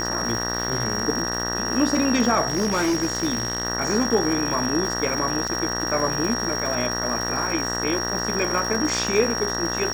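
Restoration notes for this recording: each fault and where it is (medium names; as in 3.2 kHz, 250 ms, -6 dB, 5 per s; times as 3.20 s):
buzz 60 Hz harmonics 32 -29 dBFS
crackle 530 per s -29 dBFS
whine 5.6 kHz -27 dBFS
2.48–3.65 s: clipped -18 dBFS
5.48–5.49 s: dropout 5 ms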